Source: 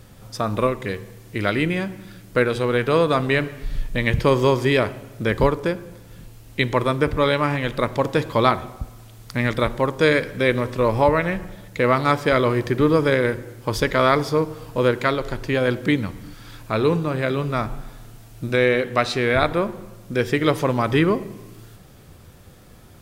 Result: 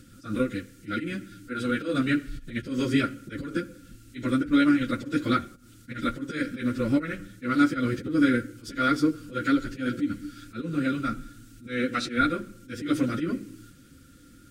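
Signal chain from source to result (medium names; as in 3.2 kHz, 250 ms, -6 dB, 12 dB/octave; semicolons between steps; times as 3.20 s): FFT filter 180 Hz 0 dB, 290 Hz +14 dB, 440 Hz -16 dB, 930 Hz -22 dB, 1.3 kHz -2 dB, 8.7 kHz +7 dB, 12 kHz +1 dB; slow attack 216 ms; dynamic bell 760 Hz, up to +5 dB, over -40 dBFS, Q 1.9; plain phase-vocoder stretch 0.63×; small resonant body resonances 510/1400 Hz, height 17 dB, ringing for 50 ms; trim -5 dB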